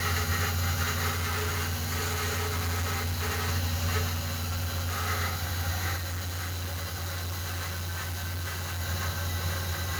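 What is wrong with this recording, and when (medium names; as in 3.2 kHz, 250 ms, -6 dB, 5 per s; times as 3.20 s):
1.10–3.49 s: clipped -26.5 dBFS
4.12–5.08 s: clipped -27 dBFS
5.96–8.81 s: clipped -30.5 dBFS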